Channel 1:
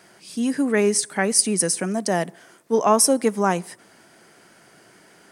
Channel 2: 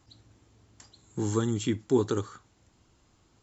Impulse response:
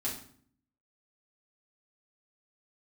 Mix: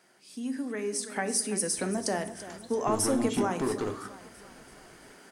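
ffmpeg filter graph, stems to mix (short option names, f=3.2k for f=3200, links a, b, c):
-filter_complex "[0:a]acompressor=threshold=-24dB:ratio=6,volume=-13dB,asplit=3[a][b][c];[b]volume=-9dB[d];[c]volume=-12.5dB[e];[1:a]aemphasis=mode=reproduction:type=75kf,acompressor=threshold=-35dB:ratio=2.5,asoftclip=type=hard:threshold=-34.5dB,adelay=1700,volume=-2.5dB,asplit=2[f][g];[g]volume=-8.5dB[h];[2:a]atrim=start_sample=2205[i];[d][h]amix=inputs=2:normalize=0[j];[j][i]afir=irnorm=-1:irlink=0[k];[e]aecho=0:1:336|672|1008|1344|1680|2016|2352|2688:1|0.56|0.314|0.176|0.0983|0.0551|0.0308|0.0173[l];[a][f][k][l]amix=inputs=4:normalize=0,equalizer=f=87:t=o:w=0.76:g=-15,dynaudnorm=f=380:g=5:m=9.5dB"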